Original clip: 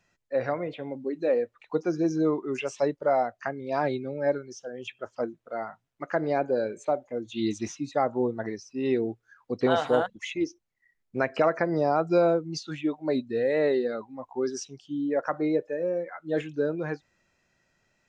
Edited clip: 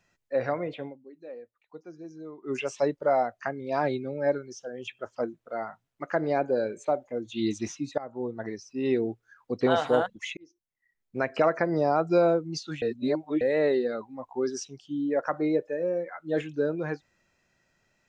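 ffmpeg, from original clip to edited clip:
-filter_complex "[0:a]asplit=7[a][b][c][d][e][f][g];[a]atrim=end=0.99,asetpts=PTS-STARTPTS,afade=t=out:st=0.85:d=0.14:c=qua:silence=0.133352[h];[b]atrim=start=0.99:end=2.37,asetpts=PTS-STARTPTS,volume=-17.5dB[i];[c]atrim=start=2.37:end=7.98,asetpts=PTS-STARTPTS,afade=t=in:d=0.14:c=qua:silence=0.133352,afade=t=out:st=5.606:d=0.004:c=hsin:silence=0.105925[j];[d]atrim=start=7.98:end=10.37,asetpts=PTS-STARTPTS,afade=t=in:d=0.91:c=qsin:silence=0.105925,afade=t=out:st=2.386:d=0.004:c=hsin[k];[e]atrim=start=10.37:end=12.822,asetpts=PTS-STARTPTS,afade=t=in:d=1.05[l];[f]atrim=start=12.818:end=13.412,asetpts=PTS-STARTPTS,areverse[m];[g]atrim=start=13.408[n];[h][i][j][k][l]concat=n=5:v=0:a=1[o];[o][m]acrossfade=d=0.004:c1=hsin:c2=hsin[p];[p][n]acrossfade=d=0.004:c1=hsin:c2=hsin"

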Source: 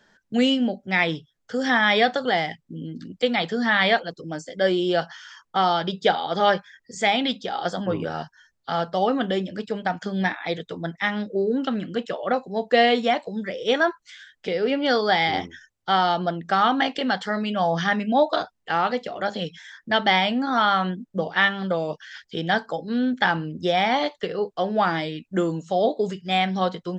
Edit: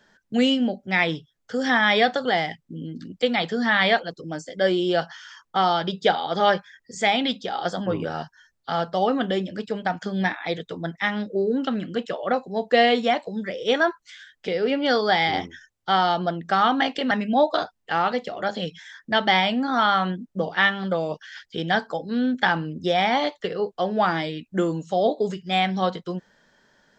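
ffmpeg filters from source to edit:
-filter_complex "[0:a]asplit=2[a][b];[a]atrim=end=17.112[c];[b]atrim=start=17.898[d];[c][d]acrossfade=d=0.004:c1=hsin:c2=hsin"

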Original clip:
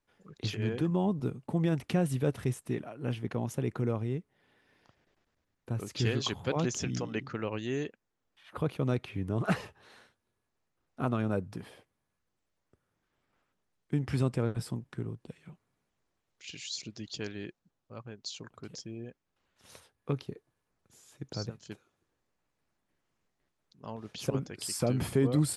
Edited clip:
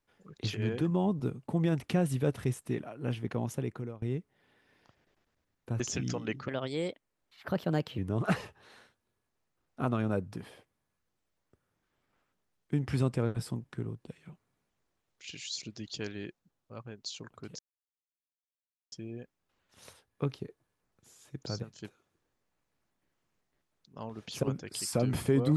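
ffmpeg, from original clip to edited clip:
-filter_complex "[0:a]asplit=6[a][b][c][d][e][f];[a]atrim=end=4.02,asetpts=PTS-STARTPTS,afade=t=out:st=3.5:d=0.52:silence=0.0841395[g];[b]atrim=start=4.02:end=5.802,asetpts=PTS-STARTPTS,afade=t=in:d=0.004:c=hsin:silence=0.0841395[h];[c]atrim=start=6.668:end=7.354[i];[d]atrim=start=7.35:end=9.18,asetpts=PTS-STARTPTS,asetrate=53802,aresample=44100[j];[e]atrim=start=9.176:end=18.79,asetpts=PTS-STARTPTS,afade=t=out:st=9.61:d=0.004:c=hsin,apad=pad_dur=1.33[k];[f]atrim=start=18.79,asetpts=PTS-STARTPTS,afade=t=in:d=0.004:c=hsin[l];[g][h]concat=n=2:v=0:a=1[m];[m][i]acrossfade=d=0.004:c1=hsin:c2=hsin[n];[n][j]acrossfade=d=0.004:c1=hsin:c2=hsin[o];[k][l]concat=n=2:v=0:a=1[p];[o][p]acrossfade=d=0.004:c1=hsin:c2=hsin"

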